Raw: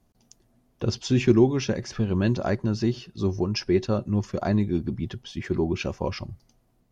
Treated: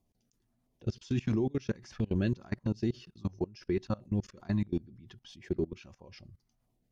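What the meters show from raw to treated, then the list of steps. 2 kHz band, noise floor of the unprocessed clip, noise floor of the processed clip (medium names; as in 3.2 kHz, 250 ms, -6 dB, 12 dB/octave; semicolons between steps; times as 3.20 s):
-11.5 dB, -66 dBFS, -77 dBFS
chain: LFO notch saw down 1.5 Hz 340–1700 Hz; level held to a coarse grid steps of 24 dB; trim -4 dB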